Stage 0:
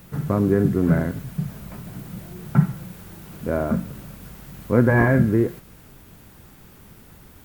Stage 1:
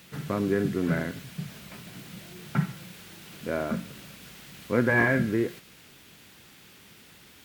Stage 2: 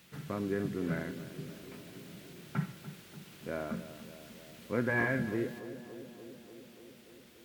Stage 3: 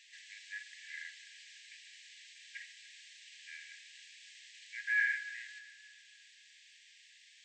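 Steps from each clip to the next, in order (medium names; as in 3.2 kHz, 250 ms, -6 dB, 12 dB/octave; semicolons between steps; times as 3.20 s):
frequency weighting D; trim -5.5 dB
tape echo 291 ms, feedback 85%, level -11 dB, low-pass 1.1 kHz; trim -8 dB
brick-wall FIR band-pass 1.6–8.3 kHz; trim +3 dB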